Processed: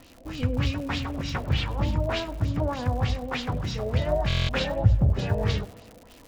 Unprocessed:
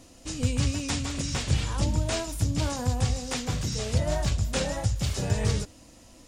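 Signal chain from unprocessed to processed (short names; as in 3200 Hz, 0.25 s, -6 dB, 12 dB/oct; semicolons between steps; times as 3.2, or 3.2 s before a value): LFO low-pass sine 3.3 Hz 560–3900 Hz; crackle 150/s -37 dBFS; 4.79–5.19 tilt shelf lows +8 dB, about 690 Hz; on a send: tape echo 98 ms, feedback 83%, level -17.5 dB, low-pass 1900 Hz; on the sum: stuck buffer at 4.28, samples 1024, times 8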